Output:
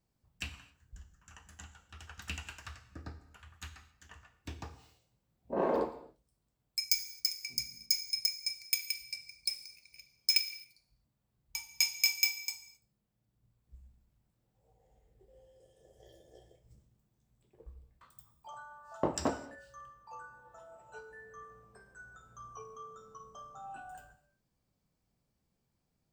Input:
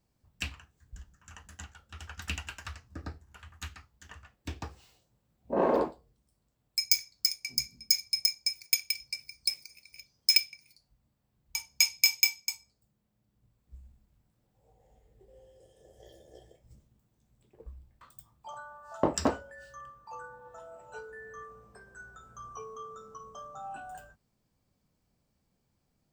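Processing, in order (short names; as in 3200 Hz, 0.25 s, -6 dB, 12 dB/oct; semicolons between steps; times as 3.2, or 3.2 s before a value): non-linear reverb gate 0.29 s falling, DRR 9.5 dB; gain -5 dB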